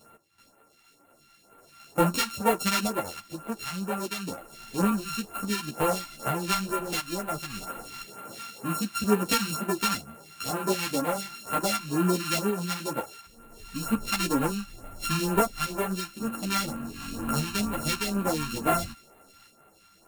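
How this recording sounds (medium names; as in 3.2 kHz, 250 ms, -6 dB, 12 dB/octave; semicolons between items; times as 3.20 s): a buzz of ramps at a fixed pitch in blocks of 32 samples; phasing stages 2, 2.1 Hz, lowest notch 460–5000 Hz; random-step tremolo 2 Hz; a shimmering, thickened sound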